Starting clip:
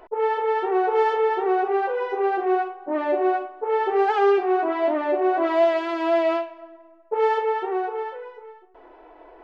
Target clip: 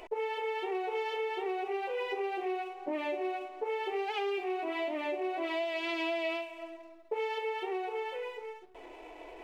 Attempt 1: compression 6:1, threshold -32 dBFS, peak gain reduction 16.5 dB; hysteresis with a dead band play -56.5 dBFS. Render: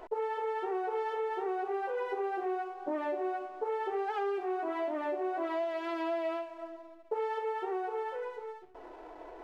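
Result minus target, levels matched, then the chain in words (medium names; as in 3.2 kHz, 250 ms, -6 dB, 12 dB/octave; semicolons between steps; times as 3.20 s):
4 kHz band -11.0 dB
compression 6:1, threshold -32 dBFS, peak gain reduction 16.5 dB; resonant high shelf 1.9 kHz +7.5 dB, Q 3; hysteresis with a dead band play -56.5 dBFS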